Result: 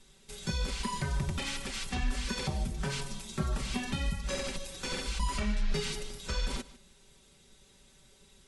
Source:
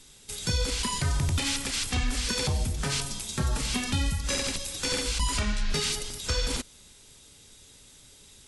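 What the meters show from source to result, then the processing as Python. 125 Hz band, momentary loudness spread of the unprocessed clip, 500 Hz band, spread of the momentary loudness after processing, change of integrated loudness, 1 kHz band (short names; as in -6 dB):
-6.0 dB, 4 LU, -4.0 dB, 5 LU, -6.5 dB, -3.0 dB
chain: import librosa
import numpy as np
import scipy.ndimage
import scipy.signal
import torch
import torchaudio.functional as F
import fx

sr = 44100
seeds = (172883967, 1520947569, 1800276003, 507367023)

y = fx.high_shelf(x, sr, hz=3300.0, db=-9.5)
y = y + 0.65 * np.pad(y, (int(5.2 * sr / 1000.0), 0))[:len(y)]
y = y + 10.0 ** (-18.5 / 20.0) * np.pad(y, (int(150 * sr / 1000.0), 0))[:len(y)]
y = y * librosa.db_to_amplitude(-4.5)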